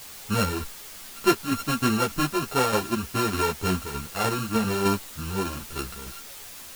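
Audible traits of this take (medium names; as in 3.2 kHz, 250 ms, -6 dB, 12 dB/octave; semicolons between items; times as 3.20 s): a buzz of ramps at a fixed pitch in blocks of 32 samples; tremolo saw down 3.3 Hz, depth 55%; a quantiser's noise floor 8-bit, dither triangular; a shimmering, thickened sound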